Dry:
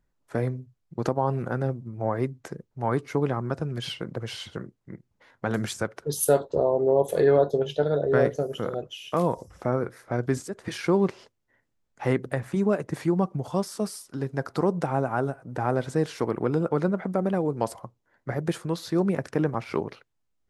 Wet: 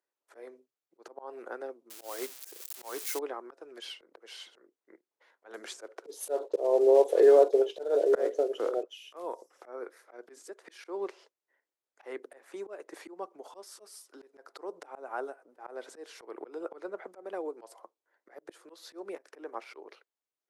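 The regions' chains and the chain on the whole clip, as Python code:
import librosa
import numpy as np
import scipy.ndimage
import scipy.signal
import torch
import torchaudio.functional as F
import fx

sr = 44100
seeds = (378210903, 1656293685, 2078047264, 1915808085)

y = fx.chain(x, sr, fx.crossing_spikes(level_db=-23.0),
    fx.quant_float(bits=2),
    fx.high_shelf(hz=2200.0, db=7.0), at=(1.9, 3.19))
y = fx.chain(y, sr, fx.block_float(bits=5),
    fx.lowpass(hz=9300.0, slope=12),
    fx.peak_eq(hz=410.0, db=9.5, octaves=2.6), at=(5.67, 8.85))
y = scipy.signal.sosfilt(scipy.signal.butter(6, 340.0, 'highpass', fs=sr, output='sos'), y)
y = fx.auto_swell(y, sr, attack_ms=191.0)
y = y * librosa.db_to_amplitude(-8.0)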